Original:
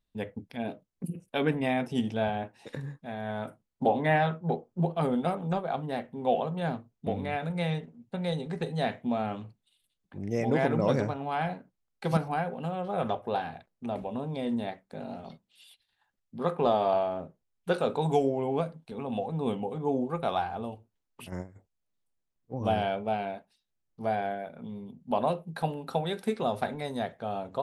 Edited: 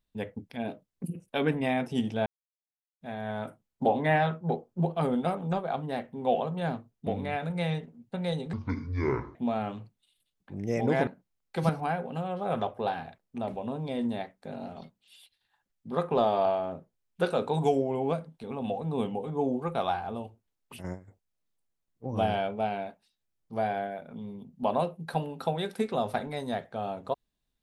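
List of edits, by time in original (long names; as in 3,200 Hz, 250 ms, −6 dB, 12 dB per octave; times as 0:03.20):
0:02.26–0:03.01: silence
0:08.53–0:08.99: play speed 56%
0:10.71–0:11.55: remove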